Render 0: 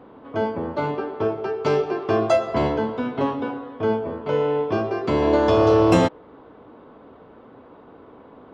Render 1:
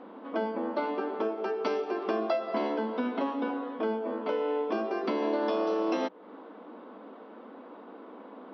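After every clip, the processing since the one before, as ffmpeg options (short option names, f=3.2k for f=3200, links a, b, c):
-af "acompressor=threshold=-27dB:ratio=4,bandreject=f=410:w=12,afftfilt=real='re*between(b*sr/4096,190,6000)':imag='im*between(b*sr/4096,190,6000)':win_size=4096:overlap=0.75"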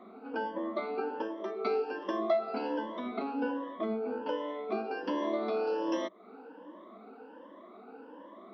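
-af "afftfilt=real='re*pow(10,19/40*sin(2*PI*(1.2*log(max(b,1)*sr/1024/100)/log(2)-(1.3)*(pts-256)/sr)))':imag='im*pow(10,19/40*sin(2*PI*(1.2*log(max(b,1)*sr/1024/100)/log(2)-(1.3)*(pts-256)/sr)))':win_size=1024:overlap=0.75,volume=-7dB"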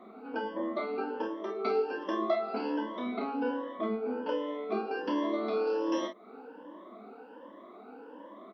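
-af "aecho=1:1:28|48:0.531|0.355"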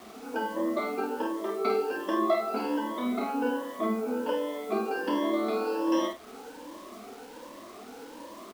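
-filter_complex "[0:a]acrusher=bits=8:mix=0:aa=0.000001,asplit=2[a][b];[b]adelay=49,volume=-6dB[c];[a][c]amix=inputs=2:normalize=0,volume=3dB"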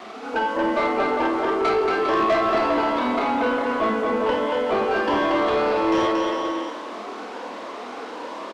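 -filter_complex "[0:a]adynamicsmooth=sensitivity=2.5:basefreq=5k,aecho=1:1:230|402.5|531.9|628.9|701.7:0.631|0.398|0.251|0.158|0.1,asplit=2[a][b];[b]highpass=f=720:p=1,volume=19dB,asoftclip=type=tanh:threshold=-11.5dB[c];[a][c]amix=inputs=2:normalize=0,lowpass=f=4.9k:p=1,volume=-6dB"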